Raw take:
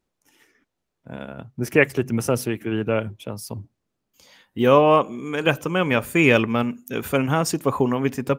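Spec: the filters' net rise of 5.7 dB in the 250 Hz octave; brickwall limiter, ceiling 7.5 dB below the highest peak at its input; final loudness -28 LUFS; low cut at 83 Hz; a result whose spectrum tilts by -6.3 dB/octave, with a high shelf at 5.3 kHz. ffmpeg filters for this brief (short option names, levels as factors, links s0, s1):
-af "highpass=83,equalizer=f=250:t=o:g=7,highshelf=f=5300:g=-8,volume=0.422,alimiter=limit=0.178:level=0:latency=1"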